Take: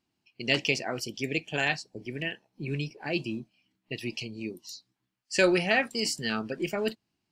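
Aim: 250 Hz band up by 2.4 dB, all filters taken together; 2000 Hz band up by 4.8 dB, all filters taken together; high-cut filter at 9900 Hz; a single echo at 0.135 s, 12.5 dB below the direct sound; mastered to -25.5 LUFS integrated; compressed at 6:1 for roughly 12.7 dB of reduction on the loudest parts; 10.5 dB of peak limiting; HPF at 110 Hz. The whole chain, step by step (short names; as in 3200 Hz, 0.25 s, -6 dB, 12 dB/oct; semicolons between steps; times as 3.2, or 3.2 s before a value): HPF 110 Hz; LPF 9900 Hz; bell 250 Hz +3.5 dB; bell 2000 Hz +6 dB; compressor 6:1, threshold -30 dBFS; limiter -24 dBFS; echo 0.135 s -12.5 dB; gain +11 dB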